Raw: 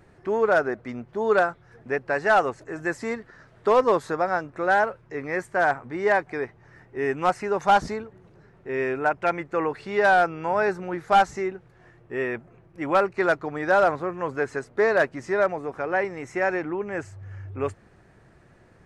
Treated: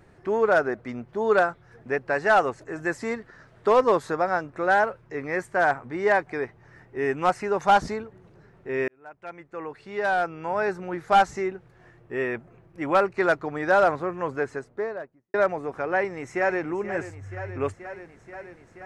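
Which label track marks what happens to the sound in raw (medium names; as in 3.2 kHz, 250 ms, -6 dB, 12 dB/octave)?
8.880000	11.240000	fade in
14.180000	15.340000	studio fade out
15.920000	16.630000	echo throw 480 ms, feedback 80%, level -12.5 dB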